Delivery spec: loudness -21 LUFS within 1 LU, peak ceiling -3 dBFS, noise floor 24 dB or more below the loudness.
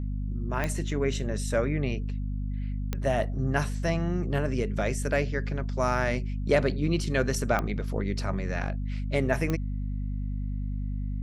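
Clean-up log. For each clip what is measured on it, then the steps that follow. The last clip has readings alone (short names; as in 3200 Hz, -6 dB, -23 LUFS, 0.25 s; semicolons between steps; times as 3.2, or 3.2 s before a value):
clicks 4; hum 50 Hz; harmonics up to 250 Hz; hum level -28 dBFS; loudness -29.5 LUFS; peak -8.5 dBFS; loudness target -21.0 LUFS
-> de-click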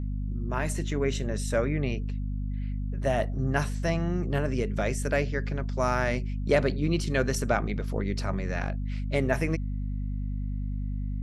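clicks 0; hum 50 Hz; harmonics up to 250 Hz; hum level -28 dBFS
-> notches 50/100/150/200/250 Hz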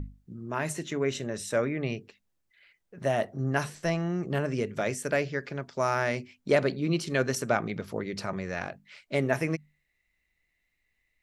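hum none; loudness -30.0 LUFS; peak -9.5 dBFS; loudness target -21.0 LUFS
-> gain +9 dB; limiter -3 dBFS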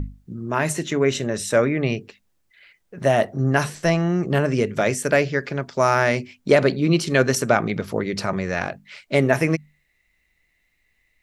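loudness -21.5 LUFS; peak -3.0 dBFS; noise floor -68 dBFS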